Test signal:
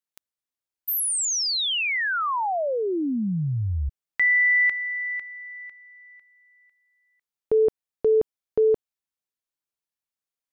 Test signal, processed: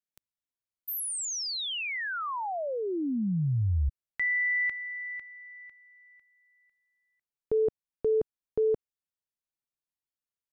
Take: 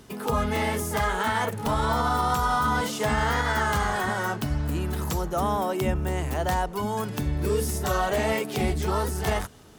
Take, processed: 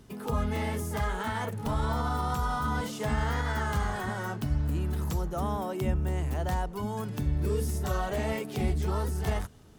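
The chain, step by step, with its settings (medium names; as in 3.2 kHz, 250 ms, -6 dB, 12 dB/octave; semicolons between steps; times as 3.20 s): bass shelf 240 Hz +9 dB; trim -8.5 dB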